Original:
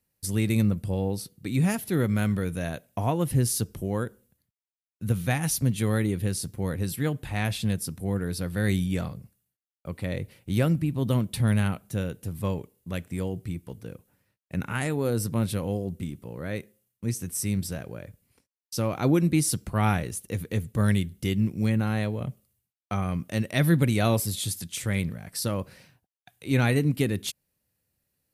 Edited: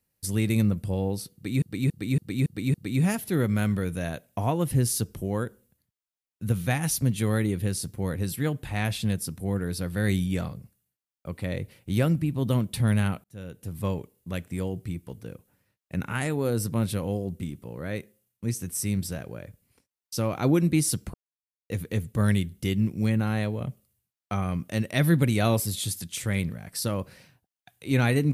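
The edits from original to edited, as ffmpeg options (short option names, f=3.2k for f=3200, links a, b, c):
-filter_complex "[0:a]asplit=9[a][b][c][d][e][f][g][h][i];[a]atrim=end=1.622[j];[b]atrim=start=1.338:end=1.622[k];[c]atrim=start=1.338:end=1.622[l];[d]atrim=start=1.338:end=1.622[m];[e]atrim=start=1.338:end=1.622[n];[f]atrim=start=1.338:end=11.84,asetpts=PTS-STARTPTS,afade=t=out:st=10.498:d=0.004:c=hsin[o];[g]atrim=start=11.84:end=19.74,asetpts=PTS-STARTPTS,afade=t=in:d=0.57,afade=t=out:st=7.896:d=0.004:c=hsin[p];[h]atrim=start=19.74:end=20.3,asetpts=PTS-STARTPTS,volume=0[q];[i]atrim=start=20.3,asetpts=PTS-STARTPTS,afade=t=in:d=0.004:c=hsin[r];[j][k]acrossfade=d=0.004:c1=hsin:c2=hsin[s];[s][l]acrossfade=d=0.004:c1=hsin:c2=hsin[t];[t][m]acrossfade=d=0.004:c1=hsin:c2=hsin[u];[u][n]acrossfade=d=0.004:c1=hsin:c2=hsin[v];[o][p][q][r]concat=n=4:v=0:a=1[w];[v][w]acrossfade=d=0.004:c1=hsin:c2=hsin"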